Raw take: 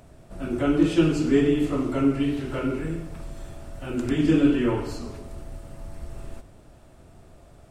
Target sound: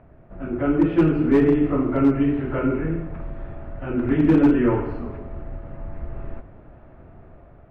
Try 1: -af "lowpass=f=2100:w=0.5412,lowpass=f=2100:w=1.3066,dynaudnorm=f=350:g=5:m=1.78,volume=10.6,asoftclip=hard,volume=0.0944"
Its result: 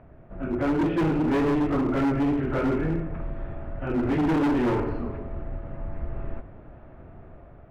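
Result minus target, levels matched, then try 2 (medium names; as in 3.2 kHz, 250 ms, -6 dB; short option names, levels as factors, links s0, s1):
overload inside the chain: distortion +14 dB
-af "lowpass=f=2100:w=0.5412,lowpass=f=2100:w=1.3066,dynaudnorm=f=350:g=5:m=1.78,volume=3.16,asoftclip=hard,volume=0.316"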